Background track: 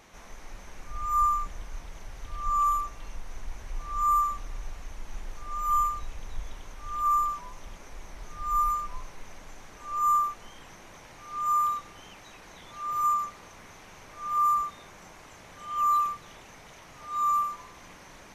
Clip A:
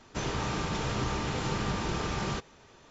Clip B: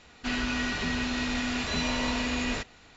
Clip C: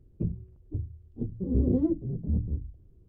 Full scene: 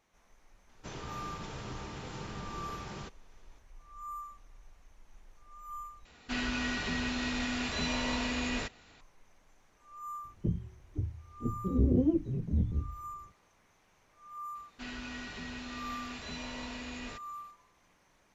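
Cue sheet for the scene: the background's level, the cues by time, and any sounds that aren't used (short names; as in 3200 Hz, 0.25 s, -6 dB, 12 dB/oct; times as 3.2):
background track -18.5 dB
0.69 add A -11 dB
6.05 replace with B -4 dB
10.24 add C -1.5 dB
14.55 add B -12.5 dB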